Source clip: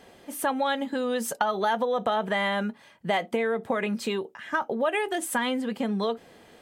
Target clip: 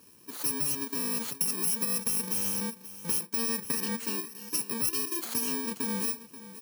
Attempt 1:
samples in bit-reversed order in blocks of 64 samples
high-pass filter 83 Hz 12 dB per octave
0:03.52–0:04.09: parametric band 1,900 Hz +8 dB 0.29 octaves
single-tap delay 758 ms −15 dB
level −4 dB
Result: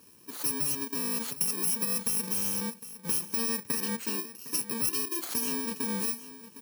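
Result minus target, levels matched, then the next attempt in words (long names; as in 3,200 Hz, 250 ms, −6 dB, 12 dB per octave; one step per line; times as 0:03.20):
echo 226 ms late
samples in bit-reversed order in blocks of 64 samples
high-pass filter 83 Hz 12 dB per octave
0:03.52–0:04.09: parametric band 1,900 Hz +8 dB 0.29 octaves
single-tap delay 532 ms −15 dB
level −4 dB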